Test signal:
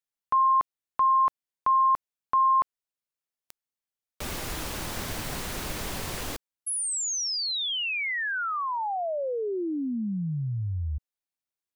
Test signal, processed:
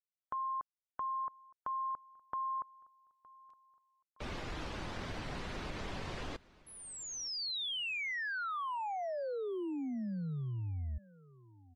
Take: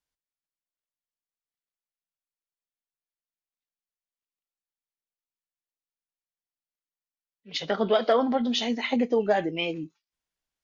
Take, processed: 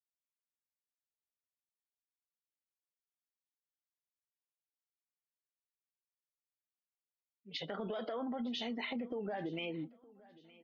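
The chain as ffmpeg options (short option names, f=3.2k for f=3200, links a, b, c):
-filter_complex "[0:a]afftdn=nr=22:nf=-43,lowpass=4.5k,alimiter=limit=-20.5dB:level=0:latency=1:release=34,acompressor=threshold=-30dB:ratio=6:attack=6.8:release=81:knee=1:detection=rms,asplit=2[a][b];[b]aecho=0:1:915|1830|2745:0.075|0.0285|0.0108[c];[a][c]amix=inputs=2:normalize=0,volume=-6dB"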